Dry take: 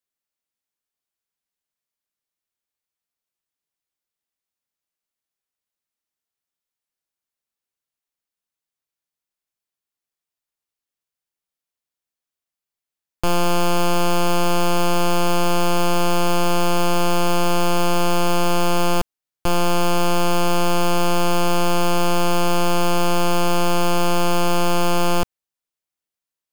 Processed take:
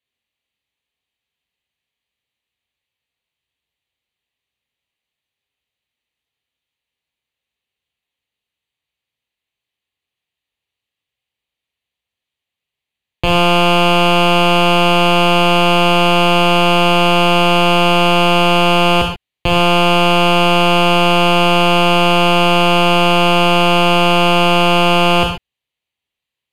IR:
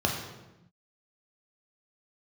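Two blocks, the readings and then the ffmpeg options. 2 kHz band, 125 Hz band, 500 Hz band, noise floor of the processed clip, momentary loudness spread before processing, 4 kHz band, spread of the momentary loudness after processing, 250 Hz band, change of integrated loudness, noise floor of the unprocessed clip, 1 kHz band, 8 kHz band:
+12.5 dB, +7.5 dB, +8.0 dB, -84 dBFS, 1 LU, +12.5 dB, 2 LU, +7.0 dB, +9.0 dB, under -85 dBFS, +8.5 dB, -2.0 dB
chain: -filter_complex "[0:a]equalizer=f=3k:t=o:w=1.1:g=12[a];[1:a]atrim=start_sample=2205,atrim=end_sample=4410,asetrate=29988,aresample=44100[b];[a][b]afir=irnorm=-1:irlink=0,volume=-8.5dB"

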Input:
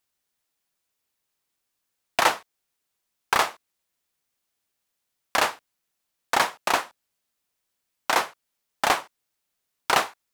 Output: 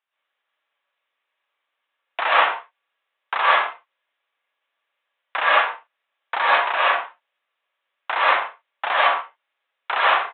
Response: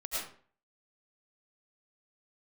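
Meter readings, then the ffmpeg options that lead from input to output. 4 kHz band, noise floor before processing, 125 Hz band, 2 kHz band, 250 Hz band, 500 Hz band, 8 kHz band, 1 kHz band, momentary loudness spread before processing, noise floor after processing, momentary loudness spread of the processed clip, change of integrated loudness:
+2.5 dB, -80 dBFS, under -20 dB, +7.5 dB, n/a, +4.0 dB, under -40 dB, +6.0 dB, 12 LU, -80 dBFS, 15 LU, +5.0 dB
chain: -filter_complex "[0:a]aresample=8000,asoftclip=type=tanh:threshold=-17dB,aresample=44100,highpass=740,lowpass=3.1k[a];[1:a]atrim=start_sample=2205,afade=t=out:st=0.3:d=0.01,atrim=end_sample=13671,asetrate=38808,aresample=44100[b];[a][b]afir=irnorm=-1:irlink=0,volume=6.5dB"

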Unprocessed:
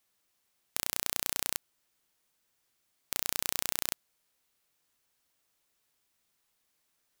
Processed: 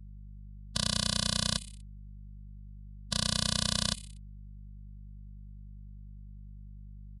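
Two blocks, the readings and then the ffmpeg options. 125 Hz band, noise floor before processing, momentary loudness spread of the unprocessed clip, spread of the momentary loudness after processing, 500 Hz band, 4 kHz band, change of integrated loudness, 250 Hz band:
+20.0 dB, -77 dBFS, 7 LU, 14 LU, +5.0 dB, +9.5 dB, +3.0 dB, +15.5 dB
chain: -filter_complex "[0:a]afftfilt=real='re*(1-between(b*sr/4096,230,2600))':imag='im*(1-between(b*sr/4096,230,2600))':win_size=4096:overlap=0.75,highpass=49,equalizer=f=5.9k:t=o:w=0.6:g=-13,aeval=exprs='val(0)+0.000447*(sin(2*PI*50*n/s)+sin(2*PI*2*50*n/s)/2+sin(2*PI*3*50*n/s)/3+sin(2*PI*4*50*n/s)/4+sin(2*PI*5*50*n/s)/5)':c=same,acrossover=split=430[a][b];[b]acrusher=bits=5:mix=0:aa=0.000001[c];[a][c]amix=inputs=2:normalize=0,aecho=1:1:61|122|183|244:0.0794|0.0429|0.0232|0.0125,asplit=2[d][e];[e]aeval=exprs='0.501*sin(PI/2*4.47*val(0)/0.501)':c=same,volume=-4.5dB[f];[d][f]amix=inputs=2:normalize=0,acontrast=68,aresample=22050,aresample=44100,afftfilt=real='re*eq(mod(floor(b*sr/1024/240),2),0)':imag='im*eq(mod(floor(b*sr/1024/240),2),0)':win_size=1024:overlap=0.75"

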